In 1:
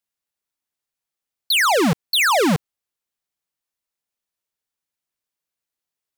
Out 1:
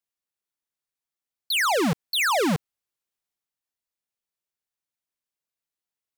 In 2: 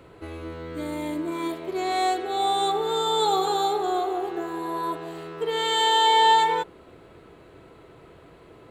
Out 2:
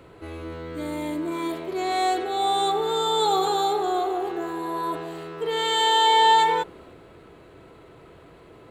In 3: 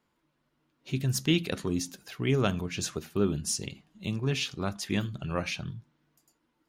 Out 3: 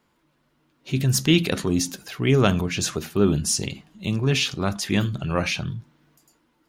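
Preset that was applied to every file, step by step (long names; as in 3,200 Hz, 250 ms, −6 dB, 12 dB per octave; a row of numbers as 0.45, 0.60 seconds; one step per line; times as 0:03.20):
transient designer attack −2 dB, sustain +3 dB
loudness normalisation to −23 LKFS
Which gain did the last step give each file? −5.5, +1.0, +8.0 decibels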